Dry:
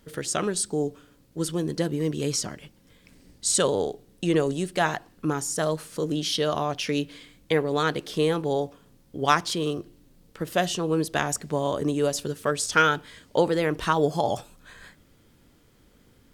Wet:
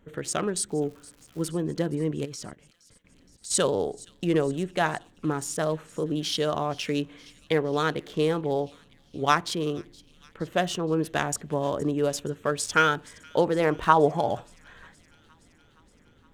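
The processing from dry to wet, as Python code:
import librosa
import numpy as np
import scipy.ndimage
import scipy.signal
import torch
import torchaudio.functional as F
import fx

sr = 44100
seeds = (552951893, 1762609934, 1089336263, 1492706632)

y = fx.wiener(x, sr, points=9)
y = fx.dmg_crackle(y, sr, seeds[0], per_s=fx.line((0.67, 110.0), (1.48, 380.0)), level_db=-41.0, at=(0.67, 1.48), fade=0.02)
y = fx.level_steps(y, sr, step_db=19, at=(2.24, 3.5), fade=0.02)
y = fx.dynamic_eq(y, sr, hz=860.0, q=0.94, threshold_db=-36.0, ratio=4.0, max_db=8, at=(13.59, 14.18))
y = fx.echo_wet_highpass(y, sr, ms=469, feedback_pct=70, hz=2600.0, wet_db=-20)
y = y * librosa.db_to_amplitude(-1.0)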